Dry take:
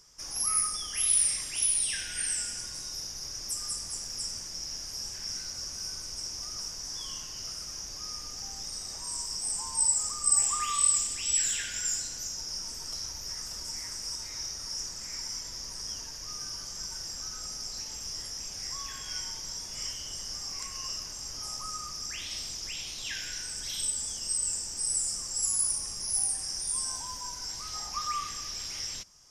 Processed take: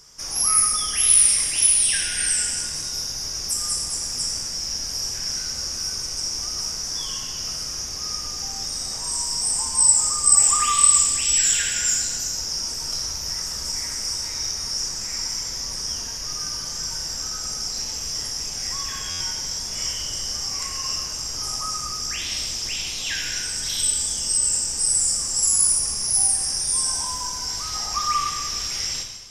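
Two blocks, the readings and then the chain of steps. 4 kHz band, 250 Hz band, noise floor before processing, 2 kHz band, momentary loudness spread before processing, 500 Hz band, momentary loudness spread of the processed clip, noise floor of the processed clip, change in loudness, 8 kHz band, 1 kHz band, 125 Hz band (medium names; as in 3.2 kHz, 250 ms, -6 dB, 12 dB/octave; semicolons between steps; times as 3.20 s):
+10.0 dB, +10.0 dB, -41 dBFS, +10.0 dB, 11 LU, +10.0 dB, 12 LU, -31 dBFS, +10.0 dB, +10.0 dB, +10.0 dB, +10.5 dB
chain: gated-style reverb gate 420 ms falling, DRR 2.5 dB; buffer glitch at 19.10 s, samples 512, times 8; trim +8 dB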